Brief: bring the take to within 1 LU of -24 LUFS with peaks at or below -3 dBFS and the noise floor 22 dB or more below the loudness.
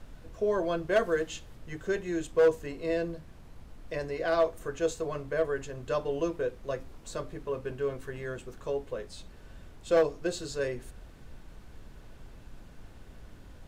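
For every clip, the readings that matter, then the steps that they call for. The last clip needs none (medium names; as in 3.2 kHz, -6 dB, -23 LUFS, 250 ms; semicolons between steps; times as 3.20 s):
clipped samples 0.2%; clipping level -17.0 dBFS; noise floor -51 dBFS; noise floor target -54 dBFS; loudness -31.5 LUFS; peak level -17.0 dBFS; loudness target -24.0 LUFS
-> clip repair -17 dBFS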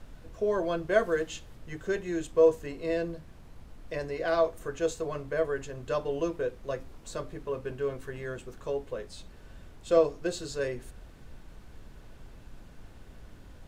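clipped samples 0.0%; noise floor -51 dBFS; noise floor target -53 dBFS
-> noise print and reduce 6 dB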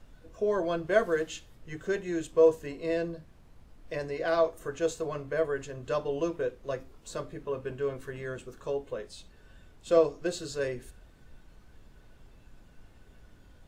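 noise floor -56 dBFS; loudness -31.0 LUFS; peak level -10.5 dBFS; loudness target -24.0 LUFS
-> trim +7 dB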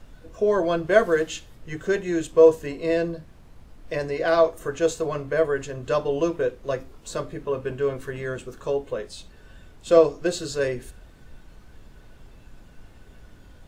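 loudness -24.0 LUFS; peak level -3.5 dBFS; noise floor -49 dBFS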